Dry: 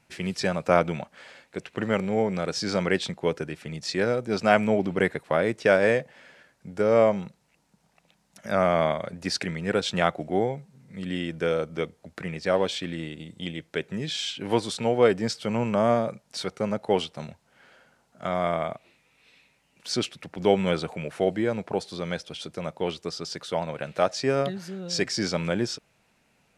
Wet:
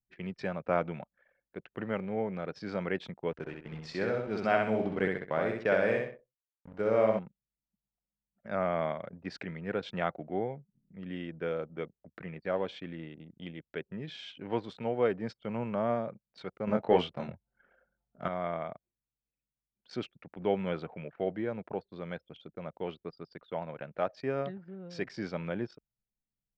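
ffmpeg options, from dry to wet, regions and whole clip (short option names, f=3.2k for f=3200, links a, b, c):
-filter_complex "[0:a]asettb=1/sr,asplit=3[a][b][c];[a]atrim=end=3.324[d];[b]atrim=start=3.32:end=7.19,asetpts=PTS-STARTPTS,afade=t=in:d=0.004:c=qsin,afade=t=out:st=3.866:d=0.004:c=qsin,highshelf=f=5.3k:g=9,aeval=exprs='val(0)*gte(abs(val(0)),0.0133)':c=same,aecho=1:1:64|128|192|256|320:0.708|0.262|0.0969|0.0359|0.0133,atrim=end_sample=170667[e];[c]atrim=start=7.186[f];[d][e]acrossfade=d=0.004:c1=hsin:c2=qsin[g];[g][f]acrossfade=d=0.004:c1=qsin:c2=hsin,asettb=1/sr,asplit=3[h][i][j];[h]atrim=end=16.674[k];[i]atrim=start=16.67:end=18.28,asetpts=PTS-STARTPTS,afade=t=in:d=0.004:c=qsin,afade=t=out:st=1.606:d=0.004:c=qsin,acontrast=84,asplit=2[l][m];[m]adelay=23,volume=-4dB[n];[l][n]amix=inputs=2:normalize=0,atrim=end_sample=71001[o];[j]atrim=start=18.276[p];[k][o]acrossfade=d=0.004:c1=hsin:c2=qsin[q];[q][p]acrossfade=d=0.004:c1=qsin:c2=hsin,lowpass=2.5k,anlmdn=0.158,equalizer=f=71:w=3.3:g=-6.5,volume=-8.5dB"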